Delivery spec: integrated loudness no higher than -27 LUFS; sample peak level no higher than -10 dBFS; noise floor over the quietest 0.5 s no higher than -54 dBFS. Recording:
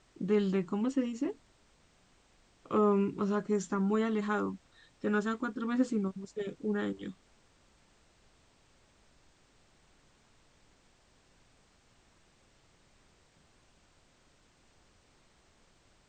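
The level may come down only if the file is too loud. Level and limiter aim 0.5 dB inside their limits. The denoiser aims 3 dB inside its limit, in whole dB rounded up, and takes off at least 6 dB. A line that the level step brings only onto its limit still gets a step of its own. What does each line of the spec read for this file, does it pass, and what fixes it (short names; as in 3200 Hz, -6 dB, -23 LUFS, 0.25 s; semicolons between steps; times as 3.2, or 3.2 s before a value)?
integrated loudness -32.5 LUFS: OK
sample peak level -15.5 dBFS: OK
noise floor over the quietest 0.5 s -66 dBFS: OK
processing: none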